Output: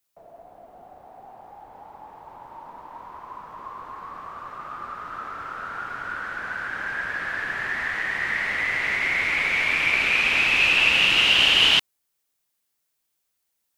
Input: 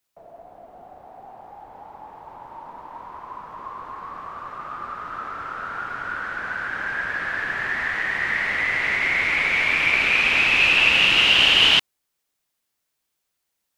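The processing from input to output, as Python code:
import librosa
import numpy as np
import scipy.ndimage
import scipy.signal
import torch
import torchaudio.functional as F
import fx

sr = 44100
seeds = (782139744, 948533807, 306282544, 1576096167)

y = fx.high_shelf(x, sr, hz=7200.0, db=6.0)
y = y * librosa.db_to_amplitude(-2.5)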